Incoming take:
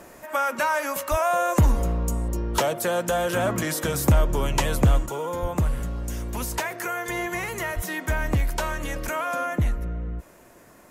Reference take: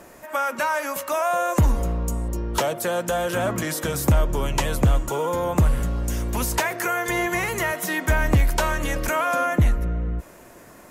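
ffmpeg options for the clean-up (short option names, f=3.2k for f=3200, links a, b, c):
-filter_complex "[0:a]asplit=3[a][b][c];[a]afade=t=out:st=1.1:d=0.02[d];[b]highpass=f=140:w=0.5412,highpass=f=140:w=1.3066,afade=t=in:st=1.1:d=0.02,afade=t=out:st=1.22:d=0.02[e];[c]afade=t=in:st=1.22:d=0.02[f];[d][e][f]amix=inputs=3:normalize=0,asplit=3[g][h][i];[g]afade=t=out:st=5.41:d=0.02[j];[h]highpass=f=140:w=0.5412,highpass=f=140:w=1.3066,afade=t=in:st=5.41:d=0.02,afade=t=out:st=5.53:d=0.02[k];[i]afade=t=in:st=5.53:d=0.02[l];[j][k][l]amix=inputs=3:normalize=0,asplit=3[m][n][o];[m]afade=t=out:st=7.75:d=0.02[p];[n]highpass=f=140:w=0.5412,highpass=f=140:w=1.3066,afade=t=in:st=7.75:d=0.02,afade=t=out:st=7.87:d=0.02[q];[o]afade=t=in:st=7.87:d=0.02[r];[p][q][r]amix=inputs=3:normalize=0,asetnsamples=n=441:p=0,asendcmd='5.06 volume volume 5dB',volume=0dB"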